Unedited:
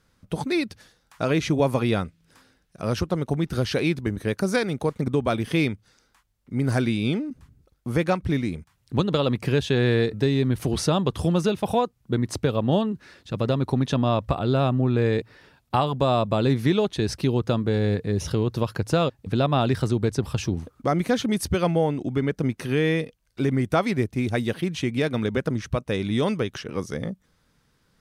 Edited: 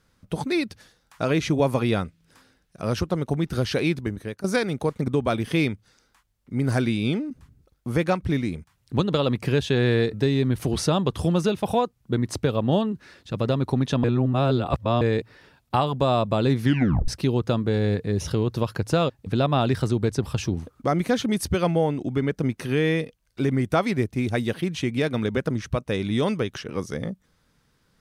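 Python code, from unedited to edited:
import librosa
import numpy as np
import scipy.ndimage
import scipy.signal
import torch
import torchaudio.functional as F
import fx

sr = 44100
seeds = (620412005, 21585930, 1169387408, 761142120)

y = fx.edit(x, sr, fx.fade_out_to(start_s=3.97, length_s=0.47, floor_db=-15.5),
    fx.reverse_span(start_s=14.04, length_s=0.97),
    fx.tape_stop(start_s=16.64, length_s=0.44), tone=tone)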